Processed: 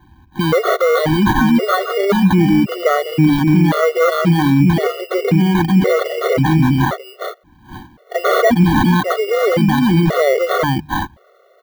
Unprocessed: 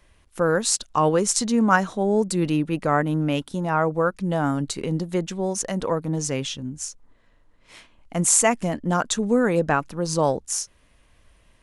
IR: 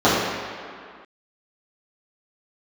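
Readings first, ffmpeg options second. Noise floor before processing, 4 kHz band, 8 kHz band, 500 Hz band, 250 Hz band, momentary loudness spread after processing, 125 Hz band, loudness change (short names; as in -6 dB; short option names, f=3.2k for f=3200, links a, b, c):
-59 dBFS, +6.5 dB, -11.0 dB, +8.5 dB, +10.5 dB, 8 LU, +12.0 dB, +8.0 dB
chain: -filter_complex "[0:a]asoftclip=type=tanh:threshold=-16.5dB,dynaudnorm=f=110:g=17:m=3dB,highpass=100,lowshelf=f=130:g=9,bandreject=f=50:t=h:w=6,bandreject=f=100:t=h:w=6,bandreject=f=150:t=h:w=6,acrusher=samples=17:mix=1:aa=0.000001,equalizer=f=8k:t=o:w=1.8:g=-13.5,asplit=2[a][b];[b]aecho=0:1:412:0.596[c];[a][c]amix=inputs=2:normalize=0,alimiter=level_in=18dB:limit=-1dB:release=50:level=0:latency=1,afftfilt=real='re*gt(sin(2*PI*0.94*pts/sr)*(1-2*mod(floor(b*sr/1024/370),2)),0)':imag='im*gt(sin(2*PI*0.94*pts/sr)*(1-2*mod(floor(b*sr/1024/370),2)),0)':win_size=1024:overlap=0.75,volume=-3dB"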